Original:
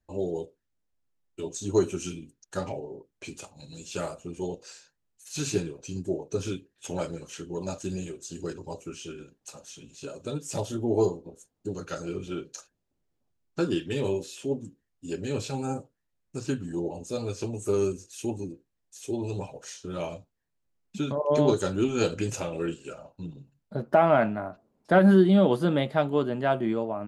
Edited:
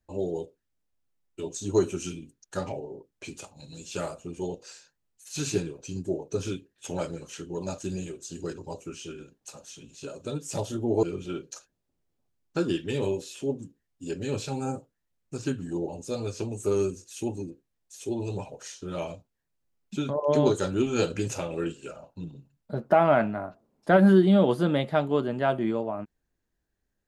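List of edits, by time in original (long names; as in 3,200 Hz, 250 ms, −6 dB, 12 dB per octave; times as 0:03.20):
0:11.03–0:12.05: remove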